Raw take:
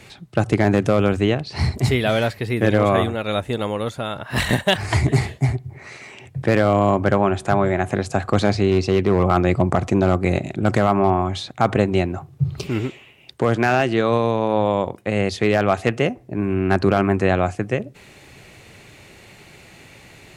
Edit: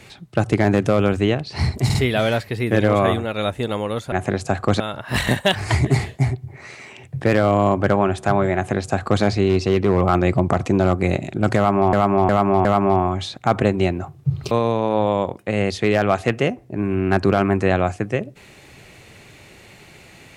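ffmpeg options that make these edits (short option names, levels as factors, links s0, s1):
-filter_complex "[0:a]asplit=9[s0][s1][s2][s3][s4][s5][s6][s7][s8];[s0]atrim=end=1.902[s9];[s1]atrim=start=1.848:end=1.902[s10];[s2]atrim=start=1.848:end=4.022[s11];[s3]atrim=start=7.768:end=8.452[s12];[s4]atrim=start=4.018:end=11.152[s13];[s5]atrim=start=10.788:end=11.152[s14];[s6]atrim=start=10.788:end=11.152[s15];[s7]atrim=start=10.788:end=12.652[s16];[s8]atrim=start=14.098[s17];[s9][s10]acrossfade=d=0.004:c1=hsin:c2=hsin[s18];[s18][s11]acrossfade=d=0.004:c1=hsin:c2=hsin[s19];[s19][s12]acrossfade=d=0.004:c1=hsin:c2=hsin[s20];[s20][s13]acrossfade=d=0.004:c1=hsin:c2=hsin[s21];[s21][s14]acrossfade=d=0.004:c1=hsin:c2=hsin[s22];[s22][s15]acrossfade=d=0.004:c1=hsin:c2=hsin[s23];[s23][s16]acrossfade=d=0.004:c1=hsin:c2=hsin[s24];[s24][s17]acrossfade=d=0.004:c1=hsin:c2=hsin"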